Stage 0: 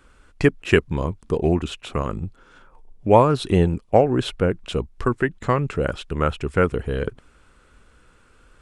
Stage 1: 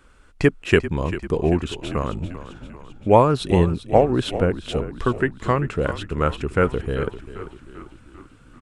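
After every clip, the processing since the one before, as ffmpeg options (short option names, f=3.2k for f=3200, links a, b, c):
-filter_complex "[0:a]asplit=7[a][b][c][d][e][f][g];[b]adelay=393,afreqshift=-42,volume=-13dB[h];[c]adelay=786,afreqshift=-84,volume=-17.9dB[i];[d]adelay=1179,afreqshift=-126,volume=-22.8dB[j];[e]adelay=1572,afreqshift=-168,volume=-27.6dB[k];[f]adelay=1965,afreqshift=-210,volume=-32.5dB[l];[g]adelay=2358,afreqshift=-252,volume=-37.4dB[m];[a][h][i][j][k][l][m]amix=inputs=7:normalize=0"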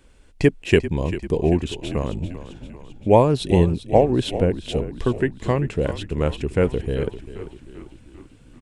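-af "equalizer=f=1.3k:t=o:w=0.59:g=-14,volume=1dB"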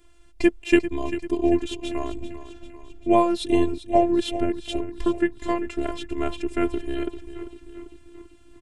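-af "afftfilt=real='hypot(re,im)*cos(PI*b)':imag='0':win_size=512:overlap=0.75,volume=1.5dB"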